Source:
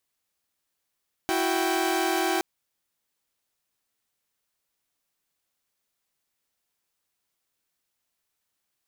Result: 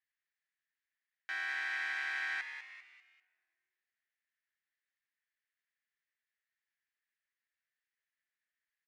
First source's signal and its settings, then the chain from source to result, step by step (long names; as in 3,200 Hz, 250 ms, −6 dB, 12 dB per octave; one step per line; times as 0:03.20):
held notes E4/F#4/G5 saw, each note −25 dBFS 1.12 s
four-pole ladder band-pass 1,900 Hz, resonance 75%
on a send: echo with shifted repeats 197 ms, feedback 40%, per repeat +140 Hz, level −9 dB
on the sum: rectangular room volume 3,700 cubic metres, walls mixed, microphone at 0.46 metres